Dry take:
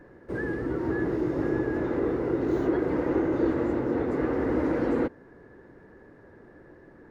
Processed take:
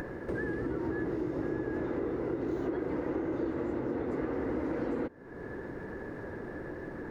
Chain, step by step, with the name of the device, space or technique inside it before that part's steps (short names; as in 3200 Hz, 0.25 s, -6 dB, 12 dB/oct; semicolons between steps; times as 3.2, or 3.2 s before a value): upward and downward compression (upward compressor, threshold -29 dBFS; compressor 4:1, threshold -31 dBFS, peak gain reduction 10 dB)